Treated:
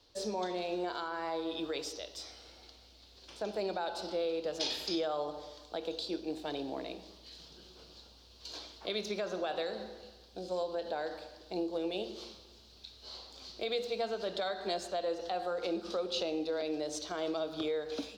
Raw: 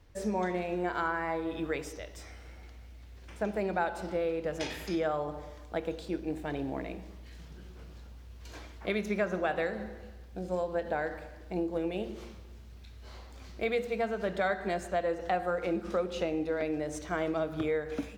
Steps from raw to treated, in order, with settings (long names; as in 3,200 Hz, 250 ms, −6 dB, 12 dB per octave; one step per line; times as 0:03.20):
three-way crossover with the lows and the highs turned down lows −15 dB, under 280 Hz, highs −18 dB, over 3,600 Hz
brickwall limiter −25.5 dBFS, peak gain reduction 6.5 dB
high shelf with overshoot 3,000 Hz +14 dB, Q 3